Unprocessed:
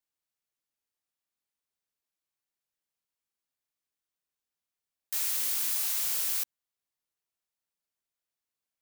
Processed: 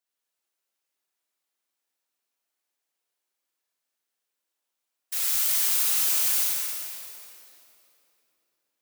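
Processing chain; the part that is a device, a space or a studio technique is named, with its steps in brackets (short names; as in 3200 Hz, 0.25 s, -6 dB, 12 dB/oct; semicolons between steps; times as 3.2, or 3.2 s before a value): whispering ghost (whisperiser; HPF 310 Hz 12 dB/oct; reverb RT60 3.1 s, pre-delay 32 ms, DRR -4 dB); gain +1.5 dB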